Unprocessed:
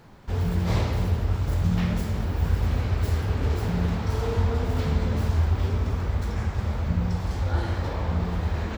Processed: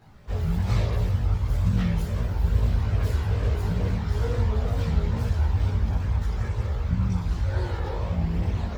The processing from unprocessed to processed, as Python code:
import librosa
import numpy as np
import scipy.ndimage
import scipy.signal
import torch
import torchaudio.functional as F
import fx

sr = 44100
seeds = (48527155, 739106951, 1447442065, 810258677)

y = fx.wow_flutter(x, sr, seeds[0], rate_hz=2.1, depth_cents=120.0)
y = fx.chorus_voices(y, sr, voices=4, hz=0.4, base_ms=18, depth_ms=1.2, mix_pct=60)